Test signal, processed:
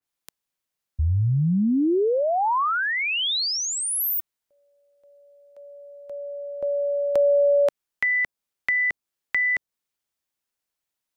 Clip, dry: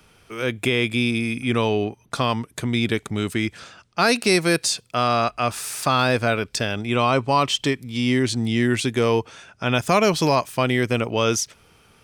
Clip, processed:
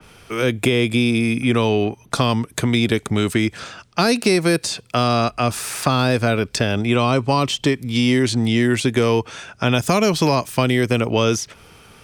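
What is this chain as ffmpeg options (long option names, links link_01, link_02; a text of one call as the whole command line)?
ffmpeg -i in.wav -filter_complex "[0:a]acrossover=split=440|950|3700[link_01][link_02][link_03][link_04];[link_01]acompressor=threshold=-25dB:ratio=4[link_05];[link_02]acompressor=threshold=-34dB:ratio=4[link_06];[link_03]acompressor=threshold=-34dB:ratio=4[link_07];[link_04]acompressor=threshold=-32dB:ratio=4[link_08];[link_05][link_06][link_07][link_08]amix=inputs=4:normalize=0,adynamicequalizer=threshold=0.00891:dfrequency=2800:dqfactor=0.7:tfrequency=2800:tqfactor=0.7:attack=5:release=100:ratio=0.375:range=2:mode=cutabove:tftype=highshelf,volume=8.5dB" out.wav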